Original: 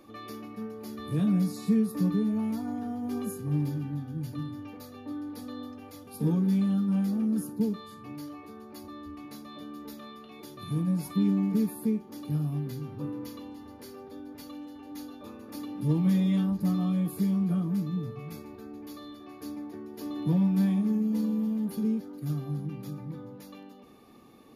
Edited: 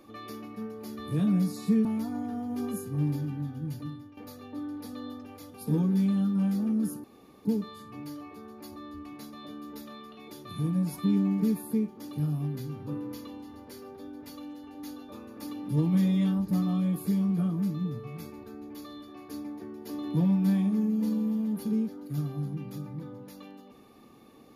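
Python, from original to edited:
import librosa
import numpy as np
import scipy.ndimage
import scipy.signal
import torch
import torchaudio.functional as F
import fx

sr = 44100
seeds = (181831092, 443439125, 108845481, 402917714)

y = fx.edit(x, sr, fx.cut(start_s=1.85, length_s=0.53),
    fx.fade_out_to(start_s=4.24, length_s=0.46, floor_db=-13.0),
    fx.insert_room_tone(at_s=7.57, length_s=0.41), tone=tone)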